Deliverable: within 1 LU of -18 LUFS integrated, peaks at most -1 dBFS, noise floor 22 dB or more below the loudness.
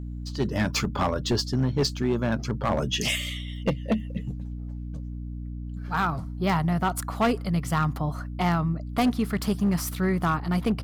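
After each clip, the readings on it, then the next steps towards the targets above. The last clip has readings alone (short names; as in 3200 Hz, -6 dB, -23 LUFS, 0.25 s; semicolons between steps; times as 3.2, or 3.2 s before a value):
clipped 1.4%; flat tops at -17.5 dBFS; hum 60 Hz; harmonics up to 300 Hz; hum level -32 dBFS; loudness -27.0 LUFS; peak -17.5 dBFS; loudness target -18.0 LUFS
-> clip repair -17.5 dBFS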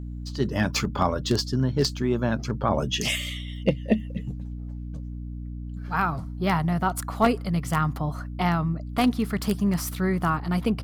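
clipped 0.0%; hum 60 Hz; harmonics up to 300 Hz; hum level -32 dBFS
-> notches 60/120/180/240/300 Hz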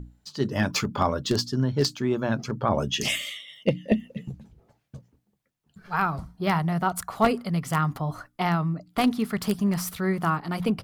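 hum none; loudness -26.5 LUFS; peak -8.5 dBFS; loudness target -18.0 LUFS
-> gain +8.5 dB; limiter -1 dBFS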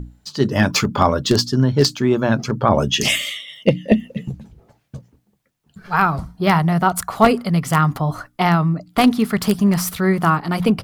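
loudness -18.0 LUFS; peak -1.0 dBFS; noise floor -64 dBFS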